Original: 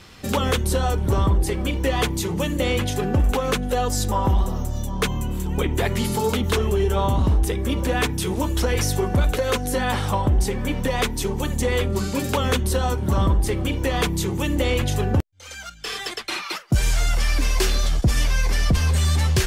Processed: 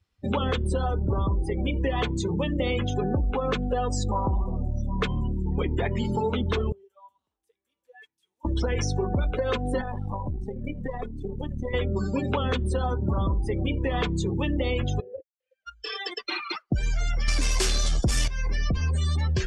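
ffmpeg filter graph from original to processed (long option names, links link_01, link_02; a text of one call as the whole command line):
ffmpeg -i in.wav -filter_complex "[0:a]asettb=1/sr,asplit=3[link_01][link_02][link_03];[link_01]atrim=end=6.724[link_04];[link_02]atrim=start=6.72:end=8.45,asetpts=PTS-STARTPTS,afade=type=in:duration=0.004:curve=qsin,afade=type=out:start_time=1.726:duration=0.004:curve=qsin,lowpass=frequency=1700:poles=1,aderivative[link_05];[link_03]atrim=start=8.446[link_06];[link_04][link_05]acrossfade=duration=0.004:curve1=hsin:curve2=qsin[link_07];[link_07][link_06]acrossfade=duration=0.004:curve1=qsin:curve2=hsin,asettb=1/sr,asplit=3[link_08][link_09][link_10];[link_08]atrim=end=9.814[link_11];[link_09]atrim=start=9.81:end=11.74,asetpts=PTS-STARTPTS,afade=type=in:duration=0.004:curve=qsin,afade=type=out:start_time=1.926:duration=0.004:curve=qsin,acrossover=split=84|740[link_12][link_13][link_14];[link_12]acompressor=threshold=-31dB:ratio=4[link_15];[link_13]acompressor=threshold=-26dB:ratio=4[link_16];[link_14]acompressor=threshold=-31dB:ratio=4[link_17];[link_15][link_16][link_17]amix=inputs=3:normalize=0,aeval=exprs='(tanh(11.2*val(0)+0.8)-tanh(0.8))/11.2':channel_layout=same[link_18];[link_10]atrim=start=11.736[link_19];[link_11][link_18]acrossfade=duration=0.004:curve1=hsin:curve2=qsin[link_20];[link_20][link_19]acrossfade=duration=0.004:curve1=qsin:curve2=hsin,asettb=1/sr,asplit=3[link_21][link_22][link_23];[link_21]atrim=end=15.004[link_24];[link_22]atrim=start=15:end=15.67,asetpts=PTS-STARTPTS,afade=type=in:duration=0.004:curve=qsin,afade=type=out:start_time=0.666:duration=0.004:curve=qsin,asplit=3[link_25][link_26][link_27];[link_25]bandpass=frequency=530:width_type=q:width=8,volume=0dB[link_28];[link_26]bandpass=frequency=1840:width_type=q:width=8,volume=-6dB[link_29];[link_27]bandpass=frequency=2480:width_type=q:width=8,volume=-9dB[link_30];[link_28][link_29][link_30]amix=inputs=3:normalize=0,asoftclip=type=hard:threshold=-28.5dB[link_31];[link_23]atrim=start=15.666[link_32];[link_24][link_31]acrossfade=duration=0.004:curve1=hsin:curve2=qsin[link_33];[link_33][link_32]acrossfade=duration=0.004:curve1=qsin:curve2=hsin,asettb=1/sr,asplit=3[link_34][link_35][link_36];[link_34]atrim=end=17.284[link_37];[link_35]atrim=start=17.28:end=18.28,asetpts=PTS-STARTPTS,afade=type=in:duration=0.004:curve=qsin,afade=type=out:start_time=0.996:duration=0.004:curve=qsin,aemphasis=mode=production:type=50fm,aeval=exprs='0.708*sin(PI/2*2.51*val(0)/0.708)':channel_layout=same[link_38];[link_36]atrim=start=18.276[link_39];[link_37][link_38]acrossfade=duration=0.004:curve1=hsin:curve2=qsin[link_40];[link_40][link_39]acrossfade=duration=0.004:curve1=qsin:curve2=hsin,acrossover=split=9500[link_41][link_42];[link_42]acompressor=threshold=-46dB:ratio=4:attack=1:release=60[link_43];[link_41][link_43]amix=inputs=2:normalize=0,afftdn=noise_reduction=34:noise_floor=-28,acompressor=threshold=-22dB:ratio=6" out.wav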